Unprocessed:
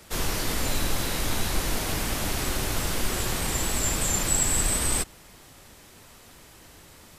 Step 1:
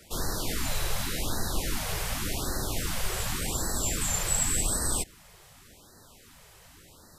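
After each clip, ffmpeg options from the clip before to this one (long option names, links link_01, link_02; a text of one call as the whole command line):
ffmpeg -i in.wav -af "afftfilt=real='re*(1-between(b*sr/1024,240*pow(2800/240,0.5+0.5*sin(2*PI*0.88*pts/sr))/1.41,240*pow(2800/240,0.5+0.5*sin(2*PI*0.88*pts/sr))*1.41))':imag='im*(1-between(b*sr/1024,240*pow(2800/240,0.5+0.5*sin(2*PI*0.88*pts/sr))/1.41,240*pow(2800/240,0.5+0.5*sin(2*PI*0.88*pts/sr))*1.41))':win_size=1024:overlap=0.75,volume=-3dB" out.wav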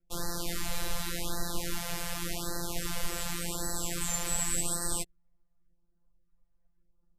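ffmpeg -i in.wav -af "anlmdn=0.398,afftfilt=real='hypot(re,im)*cos(PI*b)':imag='0':win_size=1024:overlap=0.75" out.wav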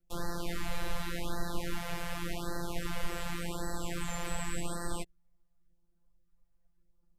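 ffmpeg -i in.wav -filter_complex "[0:a]acrossover=split=3200[link_01][link_02];[link_02]acompressor=threshold=-42dB:ratio=4:attack=1:release=60[link_03];[link_01][link_03]amix=inputs=2:normalize=0" out.wav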